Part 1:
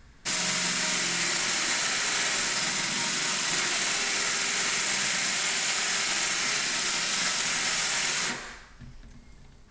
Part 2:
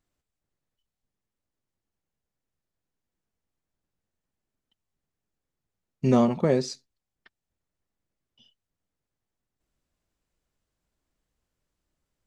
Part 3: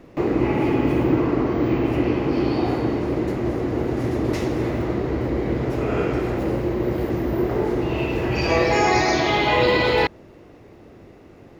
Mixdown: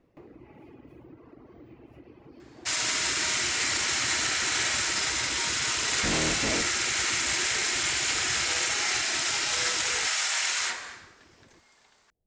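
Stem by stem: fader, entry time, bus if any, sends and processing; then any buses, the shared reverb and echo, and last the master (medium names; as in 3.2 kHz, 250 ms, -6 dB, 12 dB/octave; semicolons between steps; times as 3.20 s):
+0.5 dB, 2.40 s, no send, high-pass 660 Hz 12 dB/octave
-0.5 dB, 0.00 s, no send, cycle switcher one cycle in 3, inverted; Chebyshev low-pass 730 Hz, order 4; saturation -28 dBFS, distortion -5 dB
2.51 s -19.5 dB -> 2.98 s -11.5 dB, 0.00 s, no send, reverb removal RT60 1.1 s; compression 3:1, threshold -30 dBFS, peak gain reduction 11.5 dB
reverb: none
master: peaking EQ 85 Hz +5 dB 0.28 oct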